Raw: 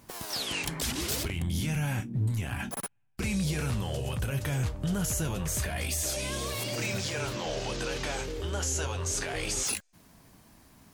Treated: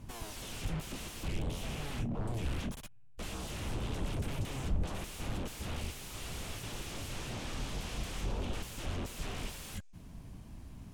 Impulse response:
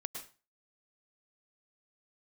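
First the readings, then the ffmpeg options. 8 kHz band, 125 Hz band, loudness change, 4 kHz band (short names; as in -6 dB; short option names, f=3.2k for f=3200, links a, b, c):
-14.0 dB, -7.5 dB, -8.5 dB, -9.0 dB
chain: -af "aeval=exprs='0.0141*(abs(mod(val(0)/0.0141+3,4)-2)-1)':c=same,aemphasis=mode=reproduction:type=riaa,aexciter=amount=1.3:drive=8.6:freq=2.5k,volume=-2dB"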